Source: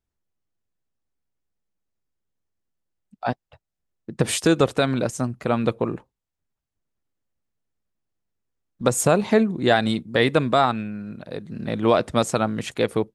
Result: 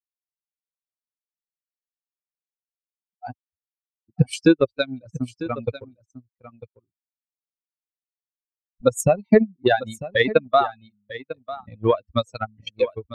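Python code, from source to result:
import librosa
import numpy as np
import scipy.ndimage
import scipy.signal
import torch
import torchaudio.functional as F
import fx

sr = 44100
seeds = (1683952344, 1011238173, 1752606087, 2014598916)

p1 = fx.bin_expand(x, sr, power=3.0)
p2 = fx.high_shelf(p1, sr, hz=6100.0, db=-4.5)
p3 = fx.notch(p2, sr, hz=1000.0, q=13.0)
p4 = fx.transient(p3, sr, attack_db=10, sustain_db=-8)
y = p4 + fx.echo_single(p4, sr, ms=948, db=-15.5, dry=0)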